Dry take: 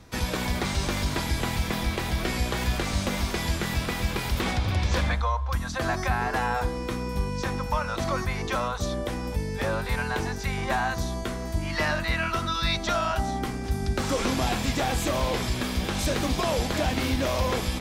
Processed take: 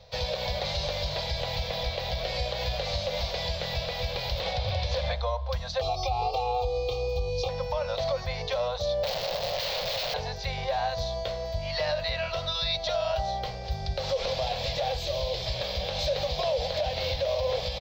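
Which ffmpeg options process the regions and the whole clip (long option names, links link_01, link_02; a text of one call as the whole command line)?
ffmpeg -i in.wav -filter_complex "[0:a]asettb=1/sr,asplit=3[link_01][link_02][link_03];[link_01]atrim=end=5.814[link_04];[link_02]atrim=start=5.81:end=7.49,asetpts=PTS-STARTPTS,afade=type=in:duration=0.004:curve=qsin,afade=type=out:start_time=1.676:duration=0.004:curve=qsin,asuperstop=centerf=1700:order=8:qfactor=1.7,aecho=1:1:2.5:0.96,atrim=end_sample=74088[link_05];[link_03]atrim=start=7.486[link_06];[link_04][link_05]acrossfade=duration=0.004:curve1=hsin:curve2=qsin[link_07];[link_07][link_06]acrossfade=duration=0.004:curve1=qsin:curve2=hsin,asettb=1/sr,asplit=3[link_08][link_09][link_10];[link_08]atrim=end=9.034[link_11];[link_09]atrim=start=9.03:end=10.14,asetpts=PTS-STARTPTS,afade=type=in:duration=0.004:curve=qsin,afade=type=out:start_time=1.106:duration=0.004:curve=qsin,lowshelf=frequency=110:gain=11.5,aeval=exprs='(mod(18.8*val(0)+1,2)-1)/18.8':channel_layout=same[link_12];[link_10]atrim=start=10.136[link_13];[link_11][link_12]acrossfade=duration=0.004:curve1=hsin:curve2=qsin[link_14];[link_14][link_13]acrossfade=duration=0.004:curve1=qsin:curve2=hsin,asettb=1/sr,asplit=3[link_15][link_16][link_17];[link_15]atrim=end=14.974[link_18];[link_16]atrim=start=14.97:end=15.46,asetpts=PTS-STARTPTS,afade=type=in:duration=0.004:curve=qsin,afade=type=out:start_time=0.486:duration=0.004:curve=qsin,equalizer=frequency=360:width=5.7:gain=12.5,acrossover=split=160|3000[link_19][link_20][link_21];[link_20]acompressor=threshold=-38dB:ratio=2:attack=3.2:release=140:knee=2.83:detection=peak[link_22];[link_19][link_22][link_21]amix=inputs=3:normalize=0[link_23];[link_17]atrim=start=15.456[link_24];[link_18][link_23]acrossfade=duration=0.004:curve1=hsin:curve2=qsin[link_25];[link_25][link_24]acrossfade=duration=0.004:curve1=qsin:curve2=hsin,firequalizer=gain_entry='entry(150,0);entry(270,-27);entry(530,14);entry(890,1);entry(1300,-7);entry(2000,-1);entry(2900,4);entry(4200,11);entry(9900,-30);entry(15000,0)':delay=0.05:min_phase=1,alimiter=limit=-15.5dB:level=0:latency=1:release=108,volume=-4dB" out.wav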